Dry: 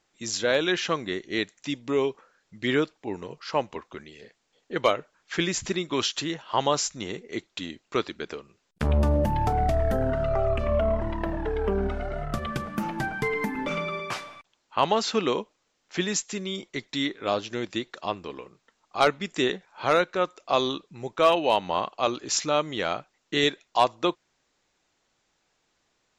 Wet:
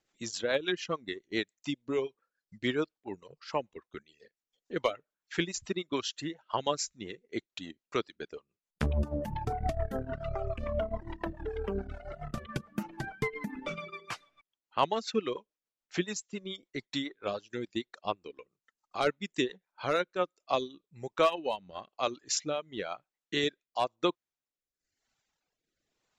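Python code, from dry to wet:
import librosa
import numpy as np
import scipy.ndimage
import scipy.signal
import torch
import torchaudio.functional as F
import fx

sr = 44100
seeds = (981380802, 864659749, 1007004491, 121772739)

y = fx.rotary_switch(x, sr, hz=7.0, then_hz=1.0, switch_at_s=19.76)
y = fx.dereverb_blind(y, sr, rt60_s=1.2)
y = fx.transient(y, sr, attack_db=3, sustain_db=-7)
y = y * 10.0 ** (-5.0 / 20.0)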